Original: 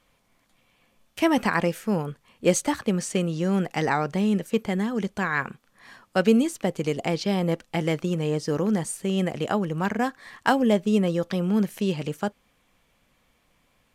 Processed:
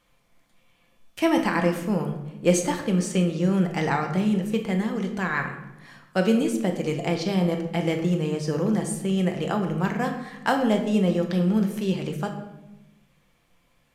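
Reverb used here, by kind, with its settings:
rectangular room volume 370 cubic metres, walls mixed, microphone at 0.81 metres
level −2 dB

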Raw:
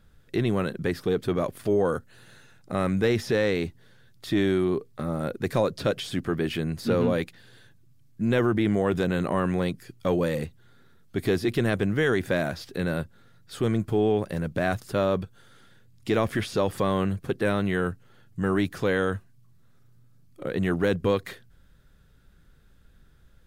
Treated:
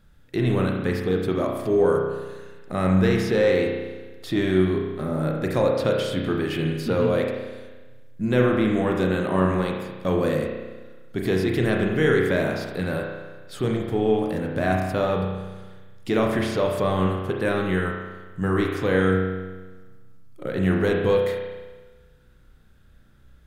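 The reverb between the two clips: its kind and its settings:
spring reverb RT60 1.3 s, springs 32 ms, chirp 50 ms, DRR 0 dB

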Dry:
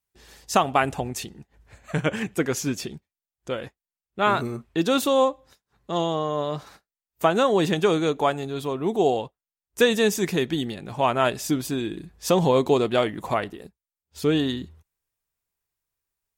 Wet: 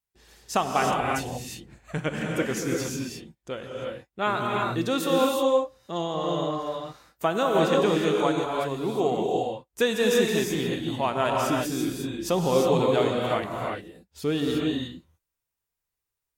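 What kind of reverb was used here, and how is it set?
reverb whose tail is shaped and stops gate 380 ms rising, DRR −1 dB
level −5 dB

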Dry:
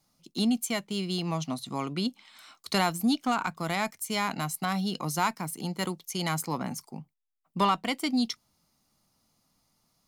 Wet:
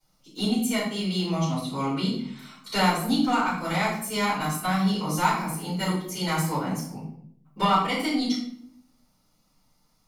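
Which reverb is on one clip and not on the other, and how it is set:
rectangular room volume 120 cubic metres, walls mixed, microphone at 4.6 metres
level −11 dB

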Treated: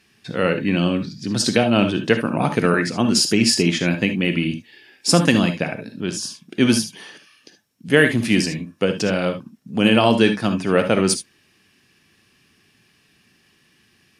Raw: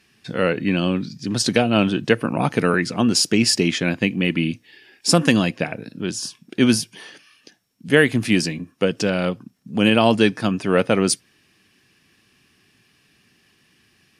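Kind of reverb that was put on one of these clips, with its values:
reverb whose tail is shaped and stops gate 90 ms rising, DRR 7.5 dB

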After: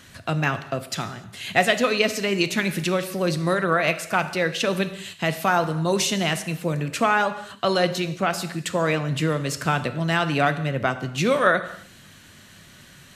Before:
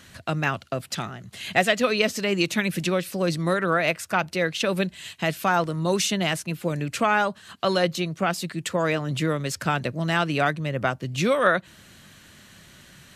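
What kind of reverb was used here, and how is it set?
reverb whose tail is shaped and stops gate 320 ms falling, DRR 9.5 dB
level +1 dB

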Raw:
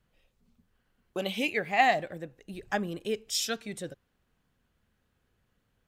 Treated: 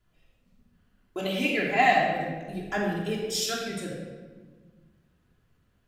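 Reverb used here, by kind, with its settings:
rectangular room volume 1,300 cubic metres, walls mixed, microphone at 3.1 metres
level −2.5 dB

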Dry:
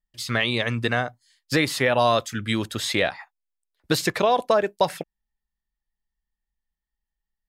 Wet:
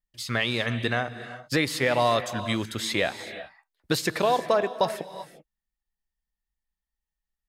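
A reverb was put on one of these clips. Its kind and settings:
reverb whose tail is shaped and stops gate 410 ms rising, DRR 11.5 dB
level −3 dB

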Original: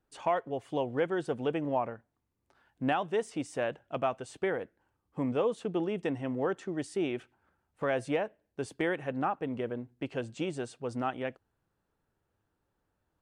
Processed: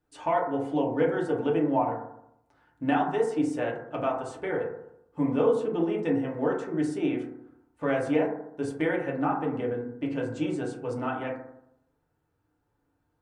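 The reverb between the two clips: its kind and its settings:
feedback delay network reverb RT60 0.77 s, low-frequency decay 1.1×, high-frequency decay 0.25×, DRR −3 dB
level −2 dB

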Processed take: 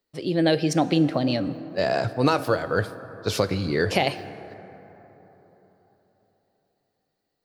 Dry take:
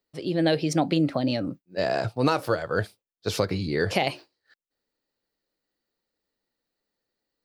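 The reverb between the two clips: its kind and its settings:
dense smooth reverb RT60 4.1 s, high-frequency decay 0.35×, DRR 13 dB
level +2 dB

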